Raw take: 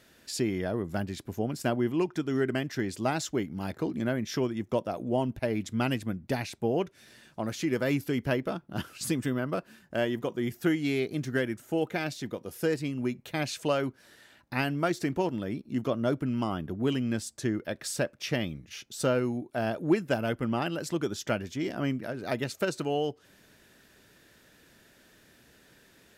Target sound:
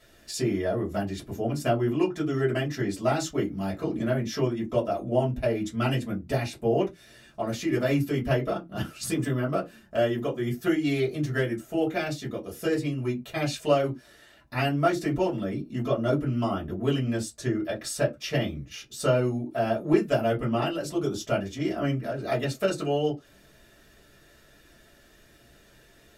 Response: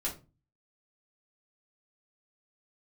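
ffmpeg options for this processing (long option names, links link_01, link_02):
-filter_complex "[0:a]asettb=1/sr,asplit=3[link_01][link_02][link_03];[link_01]atrim=end=20.834[link_04];[link_02]atrim=start=20.83:end=21.34,asetpts=PTS-STARTPTS,afade=type=in:duration=0.004:curve=qsin,afade=type=out:start_time=0.506:duration=0.004:curve=qsin,equalizer=frequency=1800:width_type=o:width=0.61:gain=-10.5[link_05];[link_03]atrim=start=21.336[link_06];[link_04][link_05]acrossfade=duration=0.004:curve1=hsin:curve2=qsin[link_07];[link_07][link_06]acrossfade=duration=0.004:curve1=qsin:curve2=hsin[link_08];[1:a]atrim=start_sample=2205,afade=type=out:start_time=0.28:duration=0.01,atrim=end_sample=12789,asetrate=88200,aresample=44100[link_09];[link_08][link_09]afir=irnorm=-1:irlink=0,volume=4.5dB"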